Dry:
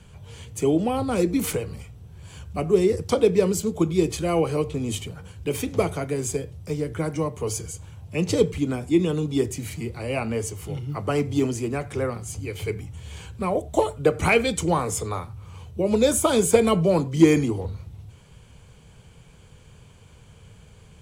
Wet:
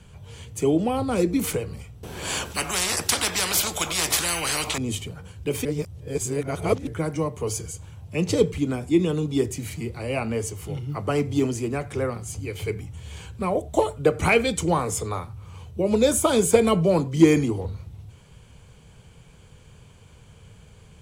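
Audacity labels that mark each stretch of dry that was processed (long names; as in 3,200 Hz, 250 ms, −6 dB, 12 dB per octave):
2.030000	4.780000	every bin compressed towards the loudest bin 10 to 1
5.650000	6.870000	reverse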